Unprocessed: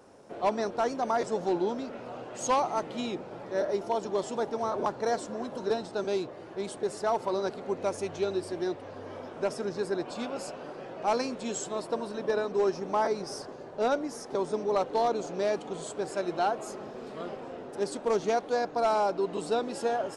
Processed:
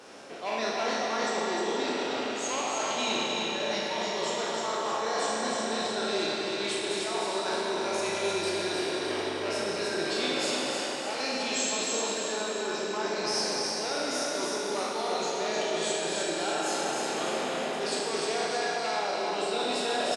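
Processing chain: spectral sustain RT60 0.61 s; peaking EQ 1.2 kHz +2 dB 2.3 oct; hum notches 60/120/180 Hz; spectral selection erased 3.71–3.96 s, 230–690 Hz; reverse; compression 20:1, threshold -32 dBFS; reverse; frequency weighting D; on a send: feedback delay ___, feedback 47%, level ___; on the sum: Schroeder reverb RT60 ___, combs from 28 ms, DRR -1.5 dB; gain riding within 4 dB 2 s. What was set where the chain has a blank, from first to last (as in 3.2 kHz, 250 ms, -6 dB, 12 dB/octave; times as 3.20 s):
307 ms, -4.5 dB, 3.2 s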